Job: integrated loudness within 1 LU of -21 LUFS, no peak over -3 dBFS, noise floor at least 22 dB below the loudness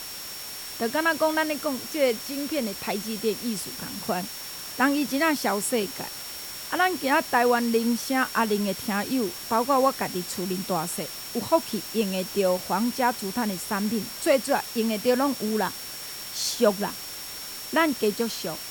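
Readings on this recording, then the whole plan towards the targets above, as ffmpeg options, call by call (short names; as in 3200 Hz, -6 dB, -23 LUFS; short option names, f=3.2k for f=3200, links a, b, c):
steady tone 5500 Hz; tone level -40 dBFS; noise floor -37 dBFS; noise floor target -48 dBFS; loudness -26.0 LUFS; peak -8.5 dBFS; loudness target -21.0 LUFS
-> -af "bandreject=f=5.5k:w=30"
-af "afftdn=nr=11:nf=-37"
-af "volume=5dB"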